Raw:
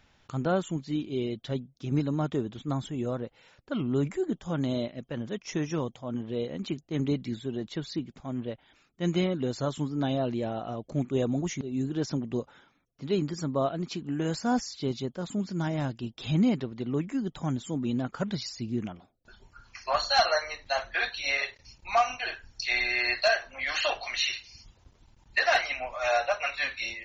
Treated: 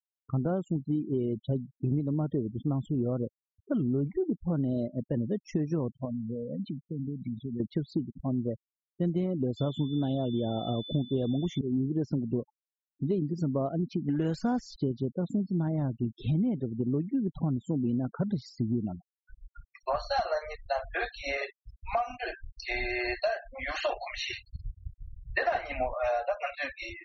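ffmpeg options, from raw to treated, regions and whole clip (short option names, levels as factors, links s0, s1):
-filter_complex "[0:a]asettb=1/sr,asplit=3[s0][s1][s2];[s0]atrim=end=6.054[s3];[s1]atrim=start=6.05:end=7.6,asetpts=PTS-STARTPTS,afade=t=in:d=0.004:c=qsin,afade=t=out:st=1.546:d=0.004:c=qsin,equalizer=f=360:t=o:w=0.57:g=-11,acompressor=threshold=0.0158:ratio=20:attack=3.2:release=140:knee=1:detection=peak,highpass=f=150:p=1[s4];[s2]atrim=start=7.596[s5];[s3][s4]acrossfade=d=0.004:c1=hsin:c2=qsin[s6];[s6][s5]acrossfade=d=0.004:c1=qsin:c2=hsin,asettb=1/sr,asplit=3[s7][s8][s9];[s7]atrim=end=9.574[s10];[s8]atrim=start=9.57:end=11.59,asetpts=PTS-STARTPTS,afade=t=in:d=0.004:c=qsin,afade=t=out:st=2.016:d=0.004:c=qsin,equalizer=f=3300:w=6.4:g=13,aeval=exprs='val(0)+0.0251*sin(2*PI*3500*n/s)':c=same[s11];[s9]atrim=start=11.586[s12];[s10][s11]acrossfade=d=0.004:c1=hsin:c2=qsin[s13];[s13][s12]acrossfade=d=0.004:c1=qsin:c2=hsin,asettb=1/sr,asplit=3[s14][s15][s16];[s14]atrim=end=14.084[s17];[s15]atrim=start=14.08:end=14.76,asetpts=PTS-STARTPTS,afade=t=in:d=0.004:c=qsin,afade=t=out:st=0.676:d=0.004:c=qsin,equalizer=f=2900:w=0.42:g=9,acrusher=bits=7:dc=4:mix=0:aa=0.000001[s18];[s16]atrim=start=14.756[s19];[s17][s18]acrossfade=d=0.004:c1=hsin:c2=qsin[s20];[s20][s19]acrossfade=d=0.004:c1=qsin:c2=hsin,asettb=1/sr,asplit=3[s21][s22][s23];[s21]atrim=end=24.304[s24];[s22]atrim=start=24.3:end=25.94,asetpts=PTS-STARTPTS,afade=t=in:d=0.004:c=qsin,afade=t=out:st=1.636:d=0.004:c=qsin,aemphasis=mode=reproduction:type=50fm,acontrast=65[s25];[s23]atrim=start=25.936[s26];[s24][s25]acrossfade=d=0.004:c1=hsin:c2=qsin[s27];[s27][s26]acrossfade=d=0.004:c1=qsin:c2=hsin,afftfilt=real='re*gte(hypot(re,im),0.0178)':imag='im*gte(hypot(re,im),0.0178)':win_size=1024:overlap=0.75,tiltshelf=f=1100:g=10,acompressor=threshold=0.0501:ratio=6"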